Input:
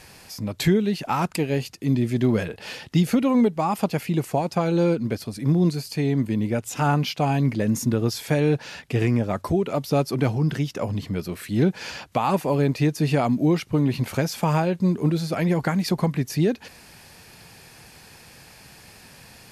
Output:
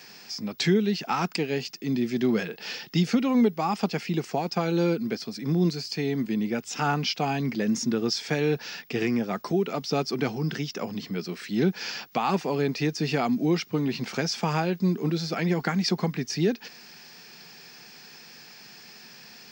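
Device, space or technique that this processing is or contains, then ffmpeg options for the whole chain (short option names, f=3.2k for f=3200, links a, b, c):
old television with a line whistle: -af "highpass=f=180:w=0.5412,highpass=f=180:w=1.3066,equalizer=f=290:t=q:w=4:g=-5,equalizer=f=580:t=q:w=4:g=-9,equalizer=f=980:t=q:w=4:g=-5,equalizer=f=5.3k:t=q:w=4:g=7,lowpass=f=6.6k:w=0.5412,lowpass=f=6.6k:w=1.3066,aeval=exprs='val(0)+0.002*sin(2*PI*15625*n/s)':c=same"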